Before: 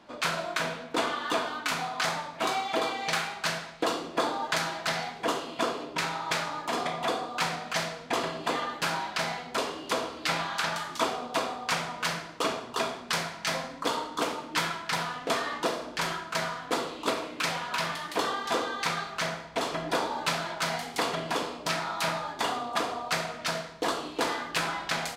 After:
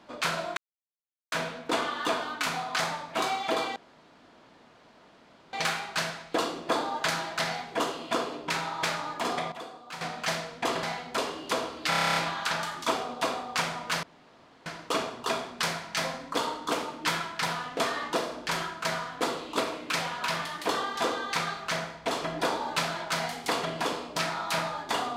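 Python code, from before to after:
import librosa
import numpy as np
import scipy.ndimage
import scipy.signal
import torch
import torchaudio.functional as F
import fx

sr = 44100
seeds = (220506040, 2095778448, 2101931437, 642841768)

y = fx.edit(x, sr, fx.insert_silence(at_s=0.57, length_s=0.75),
    fx.insert_room_tone(at_s=3.01, length_s=1.77),
    fx.clip_gain(start_s=7.0, length_s=0.49, db=-12.0),
    fx.cut(start_s=8.31, length_s=0.92),
    fx.stutter(start_s=10.29, slice_s=0.03, count=10),
    fx.insert_room_tone(at_s=12.16, length_s=0.63), tone=tone)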